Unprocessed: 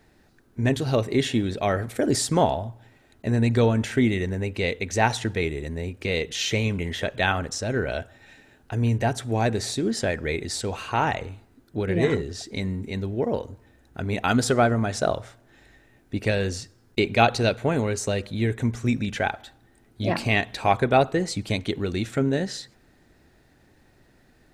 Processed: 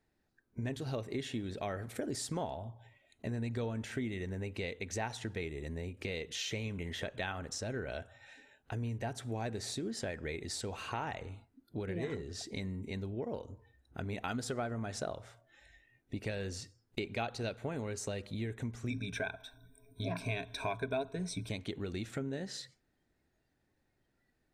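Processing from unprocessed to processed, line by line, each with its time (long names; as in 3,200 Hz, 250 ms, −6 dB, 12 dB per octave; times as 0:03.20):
0:18.90–0:21.49: EQ curve with evenly spaced ripples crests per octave 1.6, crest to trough 16 dB
whole clip: noise reduction from a noise print of the clip's start 15 dB; downward compressor 3 to 1, threshold −33 dBFS; level −5 dB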